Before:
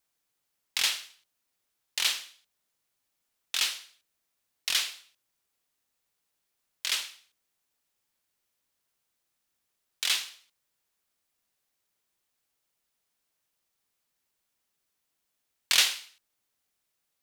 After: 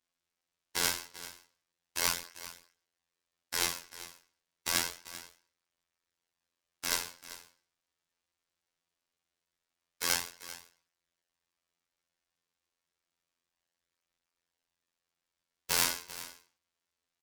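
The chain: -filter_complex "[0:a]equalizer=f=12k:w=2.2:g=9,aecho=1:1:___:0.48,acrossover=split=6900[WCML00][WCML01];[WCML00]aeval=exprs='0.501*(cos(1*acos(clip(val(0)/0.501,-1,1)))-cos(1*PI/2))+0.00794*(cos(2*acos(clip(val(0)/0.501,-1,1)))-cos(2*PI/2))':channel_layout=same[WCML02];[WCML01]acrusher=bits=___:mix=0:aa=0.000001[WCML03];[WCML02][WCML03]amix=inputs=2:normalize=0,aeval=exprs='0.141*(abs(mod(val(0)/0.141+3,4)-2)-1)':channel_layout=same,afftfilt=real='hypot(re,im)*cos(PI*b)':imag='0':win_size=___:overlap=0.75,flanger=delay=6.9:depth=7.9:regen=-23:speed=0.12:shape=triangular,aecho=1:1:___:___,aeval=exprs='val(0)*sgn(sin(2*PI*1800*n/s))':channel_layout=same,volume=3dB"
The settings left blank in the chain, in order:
1.8, 7, 2048, 390, 0.168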